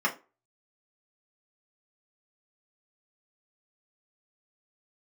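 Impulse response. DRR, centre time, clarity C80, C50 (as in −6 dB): −2.5 dB, 11 ms, 21.5 dB, 14.5 dB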